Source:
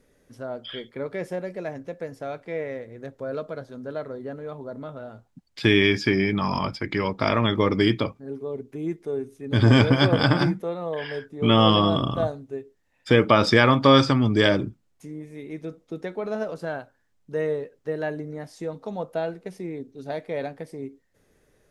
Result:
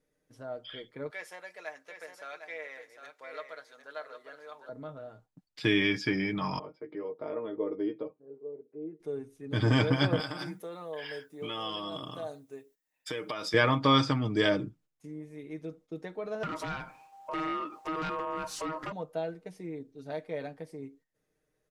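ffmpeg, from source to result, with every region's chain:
ffmpeg -i in.wav -filter_complex "[0:a]asettb=1/sr,asplit=3[link_01][link_02][link_03];[link_01]atrim=end=1.104[link_04];[link_02]atrim=start=1.1:end=4.69,asetpts=PTS-STARTPTS,afade=type=in:duration=0.004:curve=qsin,afade=type=out:start_time=3.586:duration=0.004:curve=qsin,highpass=1100,acontrast=39,aecho=1:1:755:0.398,atrim=end_sample=158319[link_05];[link_03]atrim=start=4.686[link_06];[link_04][link_05]acrossfade=duration=0.004:curve1=hsin:curve2=qsin[link_07];[link_07][link_06]acrossfade=duration=0.004:curve1=qsin:curve2=hsin,asettb=1/sr,asplit=3[link_08][link_09][link_10];[link_08]atrim=end=6.594[link_11];[link_09]atrim=start=6.59:end=9,asetpts=PTS-STARTPTS,afade=type=in:duration=0.004:curve=qsin,afade=type=out:start_time=2.406:duration=0.004:curve=qsin,bandpass=frequency=450:width_type=q:width=2.7,asplit=2[link_12][link_13];[link_13]adelay=13,volume=-5.5dB[link_14];[link_12][link_14]amix=inputs=2:normalize=0,atrim=end_sample=106281[link_15];[link_10]atrim=start=8.996[link_16];[link_11][link_15]acrossfade=duration=0.004:curve1=hsin:curve2=qsin[link_17];[link_17][link_16]acrossfade=duration=0.004:curve1=qsin:curve2=hsin,asettb=1/sr,asplit=3[link_18][link_19][link_20];[link_18]atrim=end=10.204[link_21];[link_19]atrim=start=10.2:end=13.54,asetpts=PTS-STARTPTS,afade=type=in:duration=0.004:curve=qsin,afade=type=out:start_time=3.336:duration=0.004:curve=qsin,aemphasis=mode=production:type=bsi,acompressor=threshold=-28dB:ratio=3:attack=3.2:release=140:knee=1:detection=peak[link_22];[link_20]atrim=start=13.536[link_23];[link_21][link_22]acrossfade=duration=0.004:curve1=hsin:curve2=qsin[link_24];[link_24][link_23]acrossfade=duration=0.004:curve1=qsin:curve2=hsin,asettb=1/sr,asplit=3[link_25][link_26][link_27];[link_25]atrim=end=16.434[link_28];[link_26]atrim=start=16.43:end=18.92,asetpts=PTS-STARTPTS,afade=type=in:duration=0.004:curve=qsin,afade=type=out:start_time=2.486:duration=0.004:curve=qsin,acompressor=threshold=-48dB:ratio=2.5:attack=3.2:release=140:knee=1:detection=peak,aeval=exprs='val(0)*sin(2*PI*790*n/s)':channel_layout=same,aeval=exprs='0.0708*sin(PI/2*7.94*val(0)/0.0708)':channel_layout=same[link_29];[link_27]atrim=start=18.916[link_30];[link_28][link_29]acrossfade=duration=0.004:curve1=hsin:curve2=qsin[link_31];[link_31][link_30]acrossfade=duration=0.004:curve1=qsin:curve2=hsin,agate=range=-8dB:threshold=-51dB:ratio=16:detection=peak,lowshelf=frequency=130:gain=-4,aecho=1:1:6.5:0.51,volume=-8dB" out.wav

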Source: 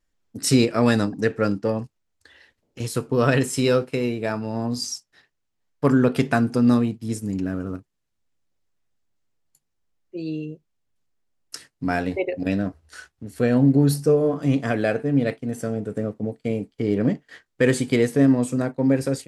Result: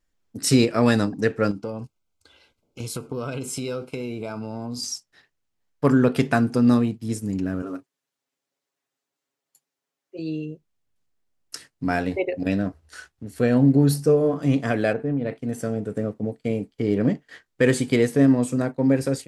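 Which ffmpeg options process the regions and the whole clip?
ffmpeg -i in.wav -filter_complex "[0:a]asettb=1/sr,asplit=3[link_01][link_02][link_03];[link_01]atrim=end=1.514[link_04];[link_02]atrim=start=1.51:end=4.83,asetpts=PTS-STARTPTS,afade=type=in:duration=0.004:curve=qsin,afade=type=out:start_time=3.316:duration=0.004:curve=qsin,acompressor=threshold=-27dB:ratio=4:attack=3.2:release=140:knee=1:detection=peak,asuperstop=centerf=1800:order=20:qfactor=4.5[link_05];[link_03]atrim=start=4.826[link_06];[link_04][link_05]acrossfade=duration=0.004:curve1=hsin:curve2=qsin[link_07];[link_07][link_06]acrossfade=duration=0.004:curve1=qsin:curve2=hsin,asettb=1/sr,asplit=3[link_08][link_09][link_10];[link_08]atrim=end=7.624[link_11];[link_09]atrim=start=7.62:end=10.19,asetpts=PTS-STARTPTS,afade=type=in:duration=0.004:curve=qsin,afade=type=out:start_time=2.566:duration=0.004:curve=qsin,highpass=300,aecho=1:1:7.3:0.77,atrim=end_sample=113337[link_12];[link_10]atrim=start=10.186[link_13];[link_11][link_12]acrossfade=duration=0.004:curve1=hsin:curve2=qsin[link_14];[link_14][link_13]acrossfade=duration=0.004:curve1=qsin:curve2=hsin,asettb=1/sr,asplit=3[link_15][link_16][link_17];[link_15]atrim=end=14.934[link_18];[link_16]atrim=start=14.93:end=15.36,asetpts=PTS-STARTPTS,afade=type=in:duration=0.004:curve=qsin,afade=type=out:start_time=0.426:duration=0.004:curve=qsin,lowpass=frequency=1500:poles=1,acompressor=threshold=-20dB:ratio=6:attack=3.2:release=140:knee=1:detection=peak[link_19];[link_17]atrim=start=15.356[link_20];[link_18][link_19]acrossfade=duration=0.004:curve1=hsin:curve2=qsin[link_21];[link_21][link_20]acrossfade=duration=0.004:curve1=qsin:curve2=hsin" out.wav

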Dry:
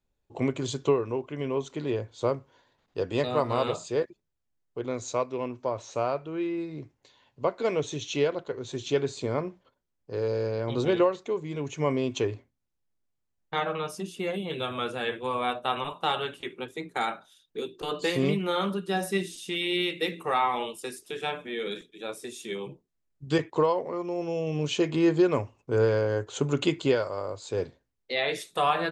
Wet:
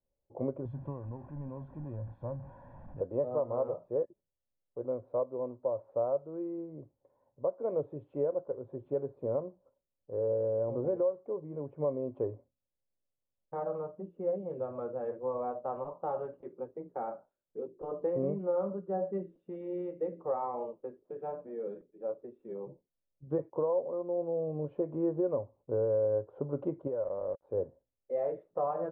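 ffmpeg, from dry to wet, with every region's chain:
ffmpeg -i in.wav -filter_complex "[0:a]asettb=1/sr,asplit=3[link_01][link_02][link_03];[link_01]atrim=end=0.654[link_04];[link_02]atrim=start=0.65:end=3.01,asetpts=PTS-STARTPTS,afade=type=in:duration=0.004:curve=qsin,afade=type=out:start_time=2.356:duration=0.004:curve=qsin,aeval=exprs='val(0)+0.5*0.0251*sgn(val(0))':channel_layout=same,equalizer=frequency=620:width=0.77:gain=-13.5,aecho=1:1:1.2:0.76,atrim=end_sample=104076[link_05];[link_03]atrim=start=3.006[link_06];[link_04][link_05]acrossfade=duration=0.004:curve1=hsin:curve2=qsin[link_07];[link_07][link_06]acrossfade=duration=0.004:curve1=qsin:curve2=hsin,asettb=1/sr,asplit=3[link_08][link_09][link_10];[link_08]atrim=end=26.874[link_11];[link_09]atrim=start=26.87:end=27.43,asetpts=PTS-STARTPTS,afade=type=in:duration=0.004:curve=qsin,afade=type=out:start_time=0.556:duration=0.004:curve=qsin,aeval=exprs='val(0)*gte(abs(val(0)),0.015)':channel_layout=same,acompressor=threshold=-28dB:ratio=4:attack=3.2:release=140:knee=1:detection=peak[link_12];[link_10]atrim=start=27.426[link_13];[link_11][link_12]acrossfade=duration=0.004:curve1=hsin:curve2=qsin[link_14];[link_14][link_13]acrossfade=duration=0.004:curve1=qsin:curve2=hsin,lowpass=frequency=1000:width=0.5412,lowpass=frequency=1000:width=1.3066,equalizer=frequency=550:width_type=o:width=0.33:gain=13,alimiter=limit=-13.5dB:level=0:latency=1:release=291,volume=-8.5dB" out.wav

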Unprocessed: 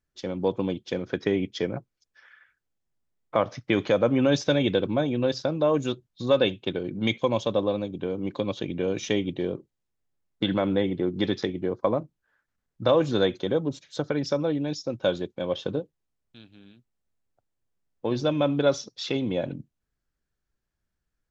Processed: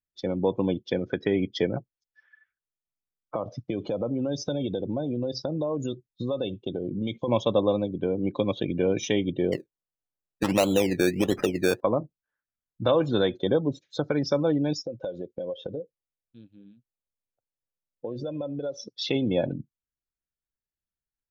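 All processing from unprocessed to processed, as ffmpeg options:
ffmpeg -i in.wav -filter_complex "[0:a]asettb=1/sr,asplit=3[link_01][link_02][link_03];[link_01]atrim=end=3.354[link_04];[link_02]atrim=start=3.35:end=7.28,asetpts=PTS-STARTPTS,afade=type=in:duration=0.004:curve=qsin,afade=type=out:start_time=3.926:duration=0.004:curve=qsin,equalizer=frequency=1900:width_type=o:width=1:gain=-10,acompressor=threshold=-28dB:ratio=5:attack=3.2:release=140:knee=1:detection=peak[link_05];[link_03]atrim=start=7.276[link_06];[link_04][link_05]acrossfade=duration=0.004:curve1=hsin:curve2=qsin[link_07];[link_07][link_06]acrossfade=duration=0.004:curve1=qsin:curve2=hsin,asettb=1/sr,asplit=3[link_08][link_09][link_10];[link_08]atrim=end=9.524[link_11];[link_09]atrim=start=9.52:end=11.81,asetpts=PTS-STARTPTS,afade=type=in:duration=0.004:curve=qsin,afade=type=out:start_time=2.286:duration=0.004:curve=qsin,equalizer=frequency=670:width=0.96:gain=7,acrusher=samples=17:mix=1:aa=0.000001:lfo=1:lforange=10.2:lforate=1.5[link_12];[link_10]atrim=start=11.806[link_13];[link_11][link_12]acrossfade=duration=0.004:curve1=hsin:curve2=qsin[link_14];[link_14][link_13]acrossfade=duration=0.004:curve1=qsin:curve2=hsin,asettb=1/sr,asplit=3[link_15][link_16][link_17];[link_15]atrim=end=14.834[link_18];[link_16]atrim=start=14.83:end=18.87,asetpts=PTS-STARTPTS,afade=type=in:duration=0.004:curve=qsin,afade=type=out:start_time=4.036:duration=0.004:curve=qsin,equalizer=frequency=520:width_type=o:width=0.4:gain=8,acompressor=threshold=-33dB:ratio=6:attack=3.2:release=140:knee=1:detection=peak[link_19];[link_17]atrim=start=18.866[link_20];[link_18][link_19]acrossfade=duration=0.004:curve1=hsin:curve2=qsin[link_21];[link_21][link_20]acrossfade=duration=0.004:curve1=qsin:curve2=hsin,afftdn=noise_reduction=19:noise_floor=-40,alimiter=limit=-15dB:level=0:latency=1:release=275,volume=3dB" out.wav

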